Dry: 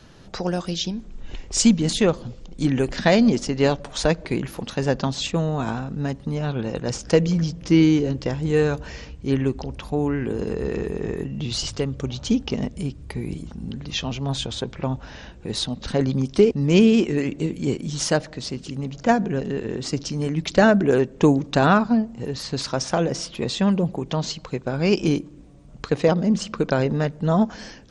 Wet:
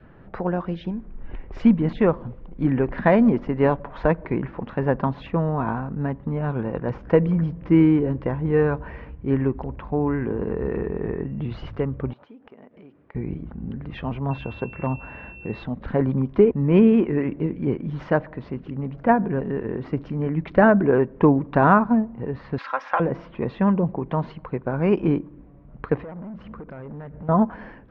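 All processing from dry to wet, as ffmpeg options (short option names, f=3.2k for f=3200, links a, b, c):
-filter_complex "[0:a]asettb=1/sr,asplit=3[a][b][c];[a]atrim=end=12.134[d];[b]atrim=start=12.13:end=13.15,asetpts=PTS-STARTPTS,afade=t=in:d=0.004:c=qsin,afade=t=out:st=1.016:d=0.004:c=qsin,highpass=390,acompressor=threshold=-41dB:ratio=12:attack=3.2:release=140:knee=1:detection=peak[e];[c]atrim=start=13.146[f];[d][e]acrossfade=d=0.004:c1=hsin:c2=qsin[g];[g][f]acrossfade=d=0.004:c1=qsin:c2=hsin,asettb=1/sr,asplit=3[h][i][j];[h]atrim=end=14.314[k];[i]atrim=start=14.31:end=15.63,asetpts=PTS-STARTPTS,afade=t=in:d=0.004:c=qsin,afade=t=out:st=1.316:d=0.004:c=qsin,highpass=48,aeval=exprs='val(0)+0.0316*sin(2*PI*2700*n/s)':c=same,asoftclip=type=hard:threshold=-15dB[l];[j]atrim=start=15.626[m];[k][l]acrossfade=d=0.004:c1=hsin:c2=qsin[n];[n][m]acrossfade=d=0.004:c1=qsin:c2=hsin,asettb=1/sr,asplit=3[o][p][q];[o]atrim=end=22.584[r];[p]atrim=start=22.58:end=23,asetpts=PTS-STARTPTS,afade=t=in:d=0.004:c=qsin,afade=t=out:st=0.416:d=0.004:c=qsin,highpass=1.2k,aecho=1:1:3.7:0.48,atrim=end_sample=18522,acontrast=84[s];[q]atrim=start=22.996[t];[r][s]acrossfade=d=0.004:c1=hsin:c2=qsin[u];[u][t]acrossfade=d=0.004:c1=qsin:c2=hsin,asettb=1/sr,asplit=3[v][w][x];[v]atrim=end=25.984[y];[w]atrim=start=25.98:end=27.29,asetpts=PTS-STARTPTS,afade=t=in:d=0.004:c=qsin,afade=t=out:st=1.306:d=0.004:c=qsin,aeval=exprs='val(0)+0.00708*(sin(2*PI*60*n/s)+sin(2*PI*2*60*n/s)/2+sin(2*PI*3*60*n/s)/3+sin(2*PI*4*60*n/s)/4+sin(2*PI*5*60*n/s)/5)':c=same,acompressor=threshold=-30dB:ratio=16:attack=3.2:release=140:knee=1:detection=peak,volume=33dB,asoftclip=hard,volume=-33dB[z];[x]atrim=start=27.286[aa];[y][z]acrossfade=d=0.004:c1=hsin:c2=qsin[ab];[ab][aa]acrossfade=d=0.004:c1=qsin:c2=hsin,lowpass=f=2k:w=0.5412,lowpass=f=2k:w=1.3066,adynamicequalizer=threshold=0.00501:dfrequency=1000:dqfactor=5.1:tfrequency=1000:tqfactor=5.1:attack=5:release=100:ratio=0.375:range=3.5:mode=boostabove:tftype=bell"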